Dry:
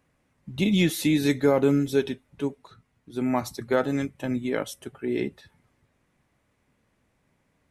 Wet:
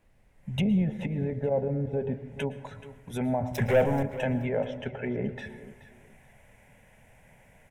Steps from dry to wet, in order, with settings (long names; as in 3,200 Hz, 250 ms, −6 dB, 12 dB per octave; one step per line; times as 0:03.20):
treble cut that deepens with the level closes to 610 Hz, closed at −21.5 dBFS
low-shelf EQ 110 Hz −6 dB
0:01.07–0:01.99: output level in coarse steps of 10 dB
0:03.53–0:04.03: leveller curve on the samples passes 3
automatic gain control gain up to 15.5 dB
brickwall limiter −13 dBFS, peak gain reduction 11 dB
phaser with its sweep stopped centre 1,200 Hz, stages 6
background noise brown −61 dBFS
0:04.58–0:05.22: high-frequency loss of the air 220 metres
repeating echo 429 ms, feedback 23%, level −16 dB
on a send at −14 dB: convolution reverb RT60 0.95 s, pre-delay 104 ms